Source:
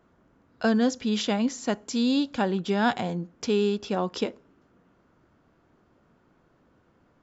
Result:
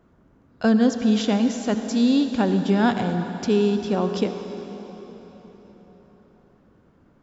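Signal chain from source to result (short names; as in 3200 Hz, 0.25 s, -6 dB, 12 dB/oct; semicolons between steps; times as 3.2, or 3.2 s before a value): low shelf 380 Hz +7.5 dB; on a send: reverb RT60 4.5 s, pre-delay 63 ms, DRR 7 dB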